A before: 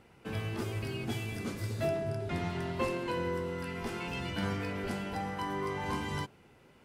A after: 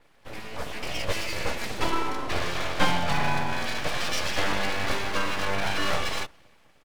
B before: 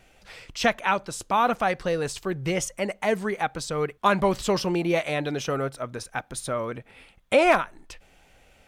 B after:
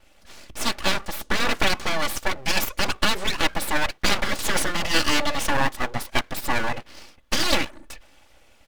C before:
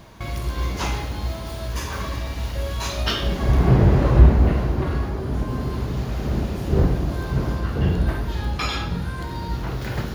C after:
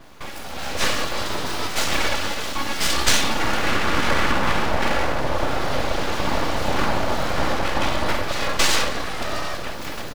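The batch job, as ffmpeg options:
ffmpeg -i in.wav -filter_complex "[0:a]afftfilt=real='re*lt(hypot(re,im),0.316)':imag='im*lt(hypot(re,im),0.316)':win_size=1024:overlap=0.75,aecho=1:1:3.5:0.95,acrossover=split=180|4700[link_01][link_02][link_03];[link_02]dynaudnorm=framelen=120:gausssize=13:maxgain=11.5dB[link_04];[link_01][link_04][link_03]amix=inputs=3:normalize=0,aeval=exprs='abs(val(0))':channel_layout=same,adynamicequalizer=threshold=0.0178:dfrequency=3700:dqfactor=0.7:tfrequency=3700:tqfactor=0.7:attack=5:release=100:ratio=0.375:range=1.5:mode=boostabove:tftype=highshelf,volume=-1dB" out.wav

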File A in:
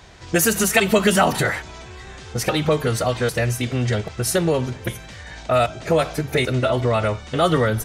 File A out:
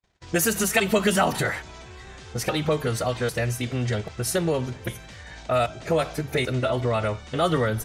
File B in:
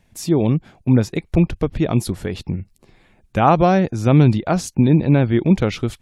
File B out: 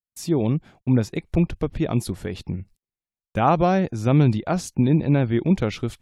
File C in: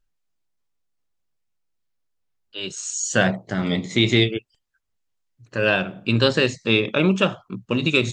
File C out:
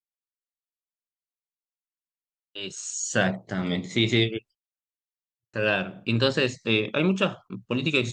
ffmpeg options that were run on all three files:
ffmpeg -i in.wav -af "agate=range=-43dB:threshold=-42dB:ratio=16:detection=peak,volume=-4.5dB" out.wav

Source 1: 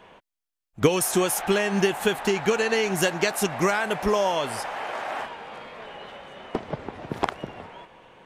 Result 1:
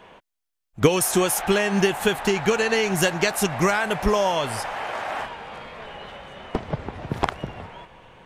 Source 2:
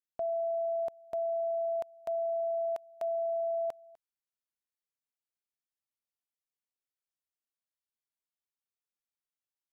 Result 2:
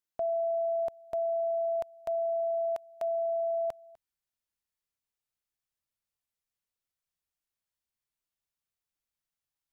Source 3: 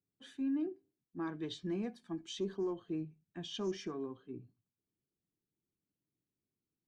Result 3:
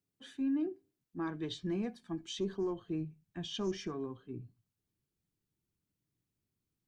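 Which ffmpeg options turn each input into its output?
ffmpeg -i in.wav -af "asubboost=boost=2.5:cutoff=160,volume=2.5dB" out.wav

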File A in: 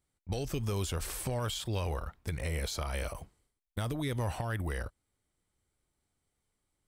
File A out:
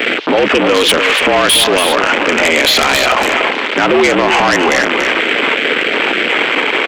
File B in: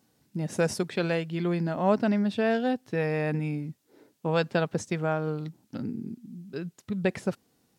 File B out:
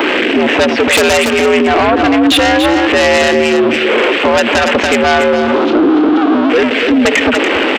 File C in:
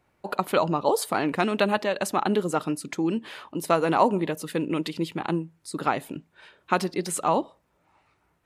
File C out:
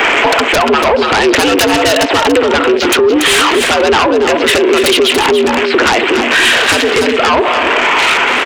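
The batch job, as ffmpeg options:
ffmpeg -i in.wav -filter_complex "[0:a]aeval=exprs='val(0)+0.5*0.0266*sgn(val(0))':channel_layout=same,acompressor=threshold=-29dB:ratio=4,crystalizer=i=6.5:c=0,highpass=frequency=190:width_type=q:width=0.5412,highpass=frequency=190:width_type=q:width=1.307,lowpass=frequency=3200:width_type=q:width=0.5176,lowpass=frequency=3200:width_type=q:width=0.7071,lowpass=frequency=3200:width_type=q:width=1.932,afreqshift=75,afwtdn=0.0126,acontrast=72,aemphasis=mode=production:type=75kf,aeval=exprs='0.794*sin(PI/2*6.31*val(0)/0.794)':channel_layout=same,equalizer=frequency=450:width_type=o:width=0.34:gain=3.5,asplit=2[link_01][link_02];[link_02]aecho=0:1:286:0.376[link_03];[link_01][link_03]amix=inputs=2:normalize=0,alimiter=level_in=7dB:limit=-1dB:release=50:level=0:latency=1,volume=-3dB" out.wav

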